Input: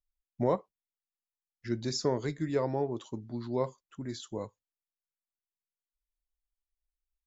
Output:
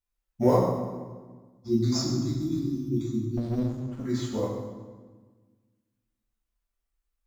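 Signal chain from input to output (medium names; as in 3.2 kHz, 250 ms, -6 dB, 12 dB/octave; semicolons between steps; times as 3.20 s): 1.18–3.69 s: spectral selection erased 370–3300 Hz; in parallel at -9.5 dB: sample-rate reducer 5.9 kHz, jitter 0%; on the sum: reverberation RT60 1.4 s, pre-delay 6 ms, DRR -7 dB; 3.37–4.05 s: sliding maximum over 33 samples; trim -2.5 dB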